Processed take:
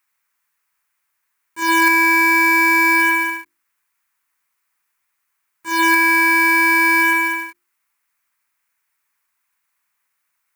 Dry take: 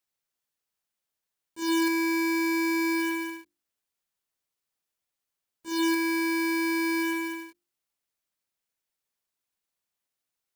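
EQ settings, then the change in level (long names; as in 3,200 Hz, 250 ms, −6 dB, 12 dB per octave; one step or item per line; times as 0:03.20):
flat-topped bell 1,500 Hz +14.5 dB
high-shelf EQ 6,000 Hz +11.5 dB
+3.0 dB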